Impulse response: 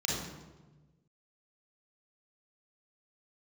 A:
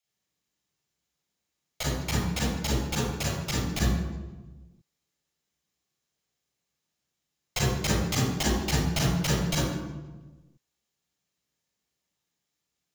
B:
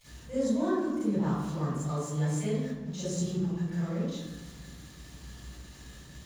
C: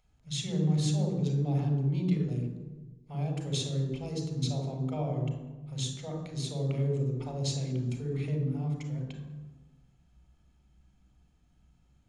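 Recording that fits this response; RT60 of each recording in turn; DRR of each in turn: A; 1.2, 1.2, 1.2 seconds; −5.0, −11.5, 3.0 decibels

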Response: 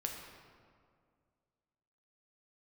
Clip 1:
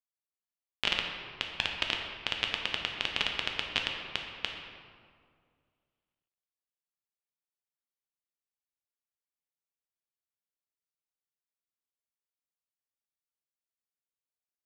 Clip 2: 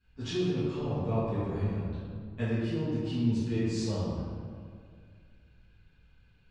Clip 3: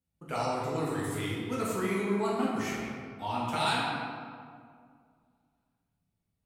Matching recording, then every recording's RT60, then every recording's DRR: 1; 2.1, 2.1, 2.1 seconds; 1.0, −16.5, −7.0 decibels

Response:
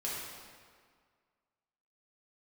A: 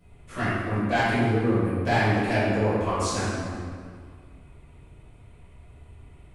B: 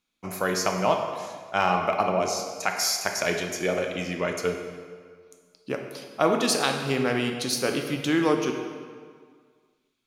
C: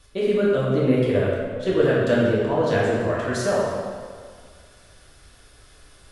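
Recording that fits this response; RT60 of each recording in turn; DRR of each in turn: C; 1.9, 1.9, 1.9 seconds; −14.5, 3.0, −7.0 decibels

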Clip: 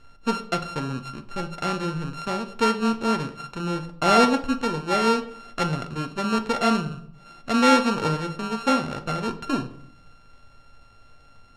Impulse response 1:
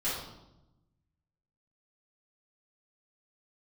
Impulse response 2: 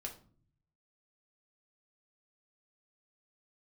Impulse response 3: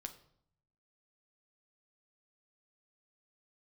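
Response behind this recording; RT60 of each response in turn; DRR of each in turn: 3; 0.90, 0.45, 0.65 seconds; −12.5, 0.5, 6.0 decibels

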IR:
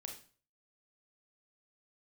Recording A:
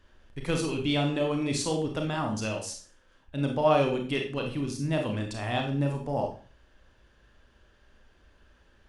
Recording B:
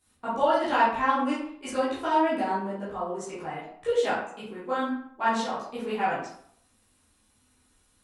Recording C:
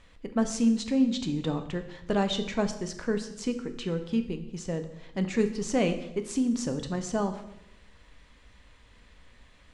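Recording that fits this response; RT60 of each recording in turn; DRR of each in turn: A; 0.40, 0.60, 0.85 seconds; 2.0, −11.5, 7.0 decibels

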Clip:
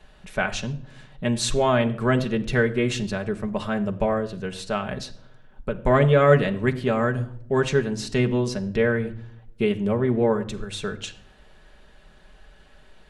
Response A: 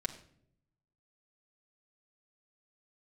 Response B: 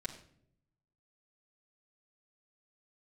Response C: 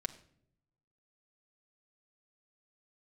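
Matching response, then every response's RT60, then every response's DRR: C; non-exponential decay, non-exponential decay, non-exponential decay; −1.0, −5.5, 3.0 decibels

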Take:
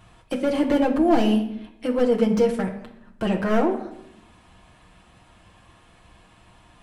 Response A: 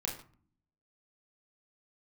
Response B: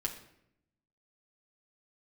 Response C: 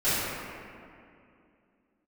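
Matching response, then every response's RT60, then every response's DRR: B; non-exponential decay, 0.75 s, 2.5 s; −1.0, −0.5, −18.0 decibels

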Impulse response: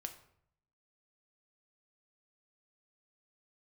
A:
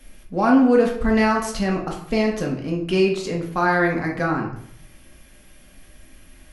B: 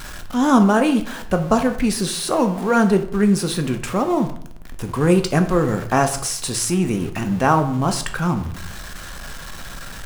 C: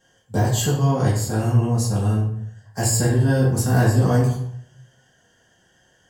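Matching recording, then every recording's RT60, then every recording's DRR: B; 0.65, 0.65, 0.65 seconds; −1.0, 6.0, −8.5 decibels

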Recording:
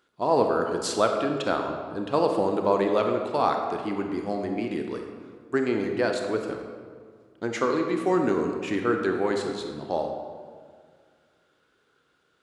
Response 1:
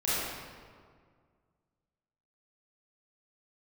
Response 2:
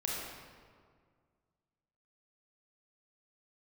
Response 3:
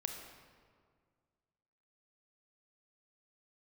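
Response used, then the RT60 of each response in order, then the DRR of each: 3; 1.9, 1.9, 1.9 seconds; −11.0, −4.0, 3.5 decibels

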